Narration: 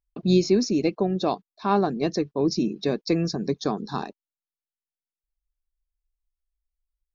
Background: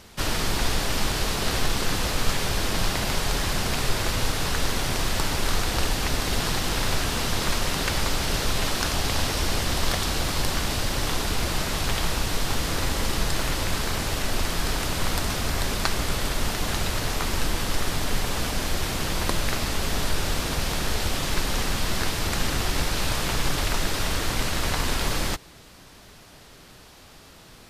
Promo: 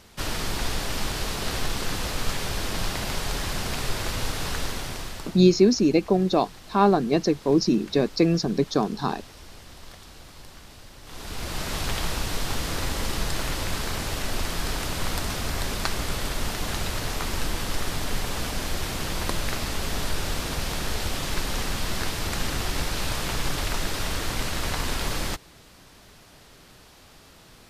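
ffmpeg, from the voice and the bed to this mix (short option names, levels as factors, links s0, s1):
-filter_complex "[0:a]adelay=5100,volume=1.41[s0];[1:a]volume=5.31,afade=t=out:st=4.53:d=0.89:silence=0.141254,afade=t=in:st=11.04:d=0.71:silence=0.125893[s1];[s0][s1]amix=inputs=2:normalize=0"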